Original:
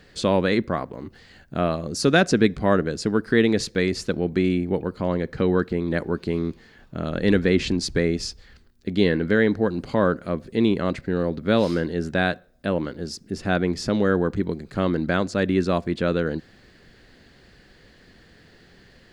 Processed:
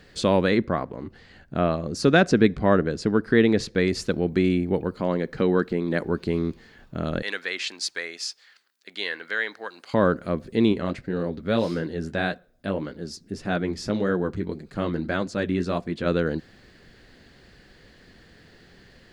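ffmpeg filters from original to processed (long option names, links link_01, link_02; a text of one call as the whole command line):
ffmpeg -i in.wav -filter_complex "[0:a]asettb=1/sr,asplit=3[link_01][link_02][link_03];[link_01]atrim=end=0.514[link_04];[link_02]atrim=start=0.51:end=3.87,asetpts=PTS-STARTPTS,afade=type=in:duration=0.004:curve=qsin,afade=type=out:start_time=3.356:duration=0.004:curve=qsin,aemphasis=mode=reproduction:type=cd[link_05];[link_03]atrim=start=3.866[link_06];[link_04][link_05]acrossfade=duration=0.004:curve1=hsin:curve2=qsin[link_07];[link_07][link_06]acrossfade=duration=0.004:curve1=qsin:curve2=hsin,asettb=1/sr,asplit=3[link_08][link_09][link_10];[link_08]atrim=end=4.944[link_11];[link_09]atrim=start=4.94:end=6.03,asetpts=PTS-STARTPTS,afade=type=in:duration=0.004:curve=qsin,afade=type=out:start_time=1.086:duration=0.004:curve=qsin,equalizer=frequency=80:width=1.9:gain=-13[link_12];[link_10]atrim=start=6.026[link_13];[link_11][link_12]acrossfade=duration=0.004:curve1=hsin:curve2=qsin[link_14];[link_14][link_13]acrossfade=duration=0.004:curve1=qsin:curve2=hsin,asettb=1/sr,asplit=3[link_15][link_16][link_17];[link_15]atrim=end=7.224[link_18];[link_16]atrim=start=7.22:end=9.94,asetpts=PTS-STARTPTS,afade=type=in:duration=0.004:curve=qsin,afade=type=out:start_time=2.716:duration=0.004:curve=qsin,highpass=1100[link_19];[link_17]atrim=start=9.936[link_20];[link_18][link_19]acrossfade=duration=0.004:curve1=hsin:curve2=qsin[link_21];[link_21][link_20]acrossfade=duration=0.004:curve1=qsin:curve2=hsin,asplit=3[link_22][link_23][link_24];[link_22]afade=type=out:start_time=10.72:duration=0.02[link_25];[link_23]flanger=delay=3.9:depth=8.3:regen=-39:speed=1.7:shape=triangular,afade=type=in:start_time=10.72:duration=0.02,afade=type=out:start_time=16.05:duration=0.02[link_26];[link_24]afade=type=in:start_time=16.05:duration=0.02[link_27];[link_25][link_26][link_27]amix=inputs=3:normalize=0" out.wav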